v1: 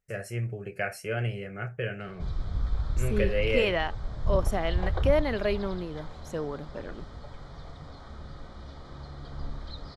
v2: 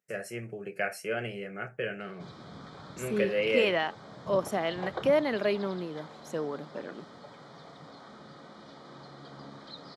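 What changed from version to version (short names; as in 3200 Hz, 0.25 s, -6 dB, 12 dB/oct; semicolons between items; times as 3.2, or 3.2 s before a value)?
master: add HPF 170 Hz 24 dB/oct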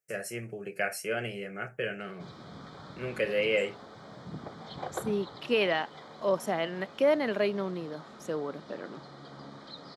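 first voice: add high shelf 5000 Hz +8 dB; second voice: entry +1.95 s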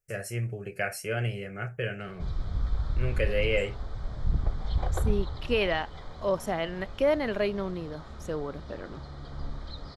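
master: remove HPF 170 Hz 24 dB/oct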